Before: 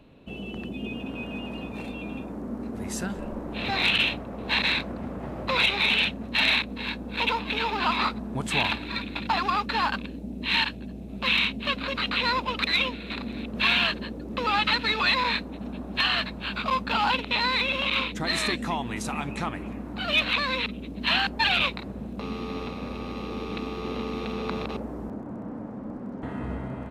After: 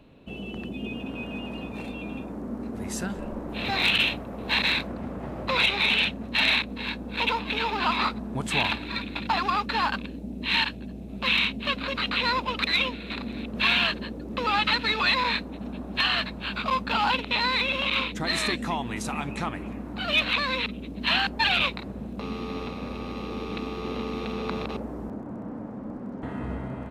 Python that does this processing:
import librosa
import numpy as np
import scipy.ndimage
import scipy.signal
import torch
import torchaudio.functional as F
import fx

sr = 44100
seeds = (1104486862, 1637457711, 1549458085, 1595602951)

y = fx.high_shelf(x, sr, hz=11000.0, db=9.0, at=(3.49, 4.87))